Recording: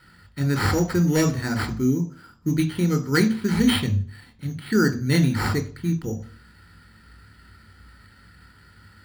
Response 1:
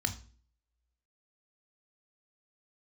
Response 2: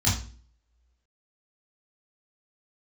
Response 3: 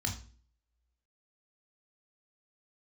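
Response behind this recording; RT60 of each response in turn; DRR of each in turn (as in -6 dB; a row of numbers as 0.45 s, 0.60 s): 1; 0.45 s, 0.40 s, 0.40 s; 7.0 dB, -8.0 dB, 2.0 dB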